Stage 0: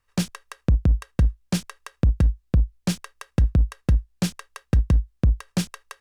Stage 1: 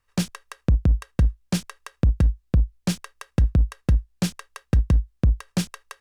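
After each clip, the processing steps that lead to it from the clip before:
no processing that can be heard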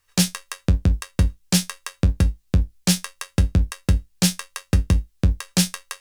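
high-shelf EQ 2,300 Hz +12 dB
tuned comb filter 91 Hz, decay 0.16 s, harmonics all, mix 80%
level +6.5 dB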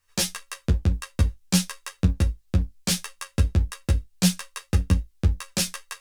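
string-ensemble chorus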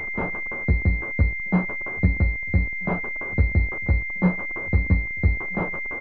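converter with a step at zero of −30 dBFS
slap from a distant wall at 220 metres, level −23 dB
switching amplifier with a slow clock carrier 2,100 Hz

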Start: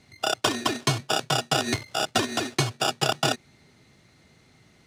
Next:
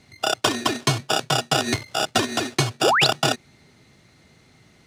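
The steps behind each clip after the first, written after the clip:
sound drawn into the spectrogram rise, 0:02.83–0:03.07, 300–5,100 Hz −21 dBFS
level +3 dB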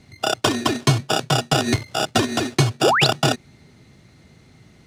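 low-shelf EQ 350 Hz +7.5 dB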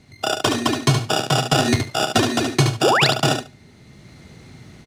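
automatic gain control gain up to 7.5 dB
on a send: repeating echo 72 ms, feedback 15%, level −6.5 dB
on the sum: level −1 dB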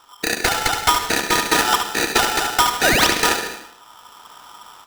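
on a send at −9 dB: convolution reverb RT60 0.70 s, pre-delay 85 ms
on the sum: ring modulator with a square carrier 1,100 Hz

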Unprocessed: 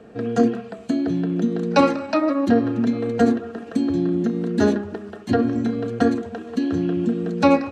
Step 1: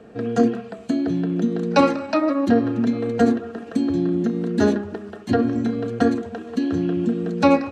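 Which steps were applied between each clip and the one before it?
no processing that can be heard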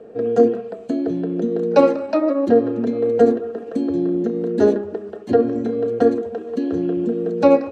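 parametric band 470 Hz +15 dB 1.3 octaves
level −7 dB

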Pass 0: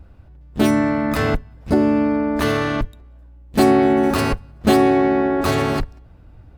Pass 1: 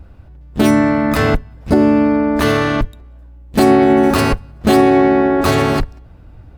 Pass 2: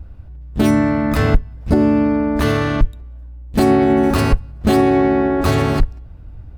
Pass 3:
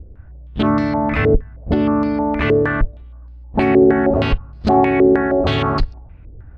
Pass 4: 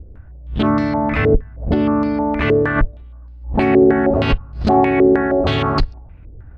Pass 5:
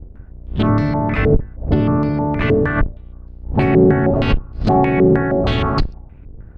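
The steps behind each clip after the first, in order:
boost into a limiter +6 dB; level −1 dB
low-shelf EQ 130 Hz +11 dB; level −4.5 dB
low-pass on a step sequencer 6.4 Hz 440–4,600 Hz; level −3 dB
background raised ahead of every attack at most 130 dB per second
sub-octave generator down 1 octave, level +1 dB; level −1.5 dB

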